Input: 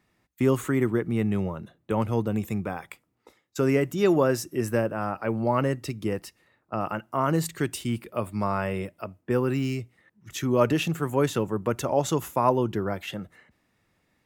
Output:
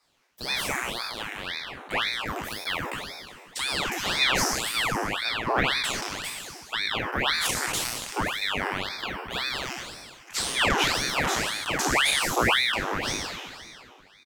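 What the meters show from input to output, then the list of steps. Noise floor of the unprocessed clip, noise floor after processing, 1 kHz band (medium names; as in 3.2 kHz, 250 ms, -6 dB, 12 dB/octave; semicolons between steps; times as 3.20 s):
-72 dBFS, -52 dBFS, +1.0 dB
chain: spectral sustain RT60 1.79 s; peaking EQ 5.6 kHz +7 dB 0.57 oct; harmonic-percussive split percussive +5 dB; rippled Chebyshev high-pass 520 Hz, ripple 3 dB; in parallel at -11 dB: overload inside the chain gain 25.5 dB; on the sum: echo from a far wall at 210 m, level -26 dB; ring modulator with a swept carrier 1.6 kHz, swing 90%, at 1.9 Hz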